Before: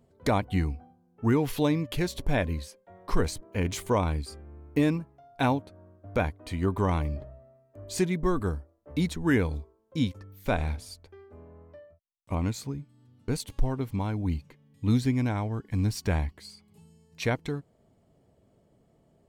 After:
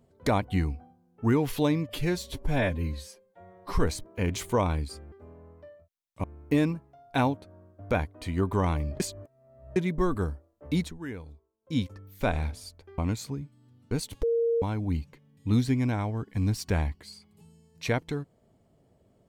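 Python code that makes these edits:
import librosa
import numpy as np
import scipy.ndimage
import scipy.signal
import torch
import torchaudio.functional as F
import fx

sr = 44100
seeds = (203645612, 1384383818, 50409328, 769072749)

y = fx.edit(x, sr, fx.stretch_span(start_s=1.89, length_s=1.26, factor=1.5),
    fx.reverse_span(start_s=7.25, length_s=0.76),
    fx.fade_down_up(start_s=9.04, length_s=1.01, db=-14.0, fade_s=0.2),
    fx.move(start_s=11.23, length_s=1.12, to_s=4.49),
    fx.bleep(start_s=13.6, length_s=0.39, hz=464.0, db=-22.0), tone=tone)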